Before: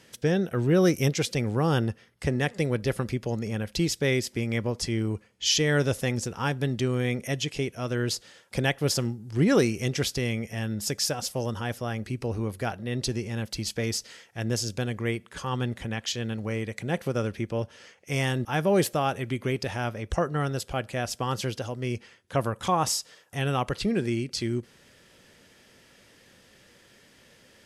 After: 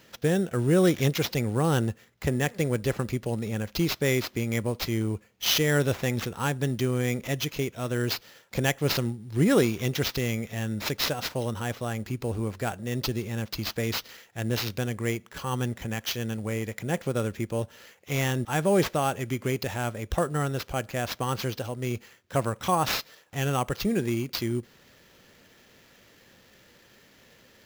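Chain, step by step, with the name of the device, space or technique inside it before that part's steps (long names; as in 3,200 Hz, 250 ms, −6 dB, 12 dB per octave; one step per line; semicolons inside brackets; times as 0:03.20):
early companding sampler (sample-rate reduction 9,200 Hz, jitter 0%; log-companded quantiser 8 bits)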